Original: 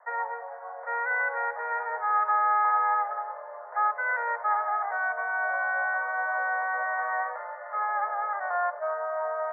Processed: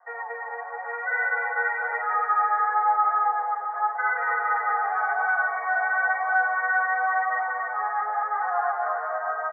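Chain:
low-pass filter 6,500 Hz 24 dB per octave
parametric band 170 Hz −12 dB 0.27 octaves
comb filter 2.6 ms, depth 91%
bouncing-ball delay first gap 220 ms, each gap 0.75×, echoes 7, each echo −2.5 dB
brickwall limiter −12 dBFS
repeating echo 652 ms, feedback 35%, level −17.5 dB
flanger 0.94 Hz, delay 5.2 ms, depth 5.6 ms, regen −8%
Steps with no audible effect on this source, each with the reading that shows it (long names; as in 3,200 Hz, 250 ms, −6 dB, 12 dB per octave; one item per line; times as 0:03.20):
low-pass filter 6,500 Hz: nothing at its input above 2,300 Hz
parametric band 170 Hz: nothing at its input below 400 Hz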